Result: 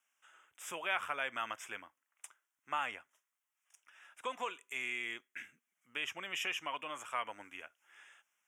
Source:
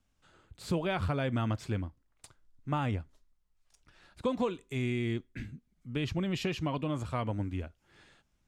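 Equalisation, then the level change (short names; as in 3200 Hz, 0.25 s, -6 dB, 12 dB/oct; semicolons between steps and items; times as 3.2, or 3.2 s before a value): HPF 1300 Hz 12 dB/oct; Butterworth band-stop 4300 Hz, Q 1.7; bell 6000 Hz -2 dB 1.4 oct; +5.0 dB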